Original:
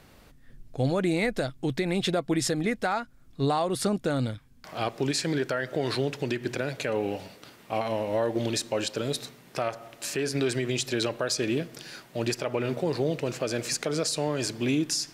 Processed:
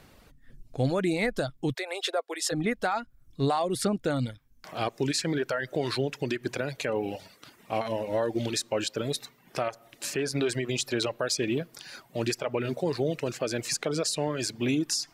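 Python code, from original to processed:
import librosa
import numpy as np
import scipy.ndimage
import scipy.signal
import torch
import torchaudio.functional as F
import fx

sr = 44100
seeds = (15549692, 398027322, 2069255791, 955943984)

y = fx.steep_highpass(x, sr, hz=430.0, slope=36, at=(1.73, 2.51), fade=0.02)
y = fx.dereverb_blind(y, sr, rt60_s=0.68)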